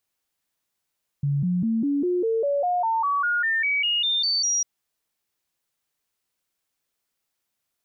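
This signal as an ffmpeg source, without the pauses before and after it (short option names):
-f lavfi -i "aevalsrc='0.1*clip(min(mod(t,0.2),0.2-mod(t,0.2))/0.005,0,1)*sin(2*PI*142*pow(2,floor(t/0.2)/3)*mod(t,0.2))':d=3.4:s=44100"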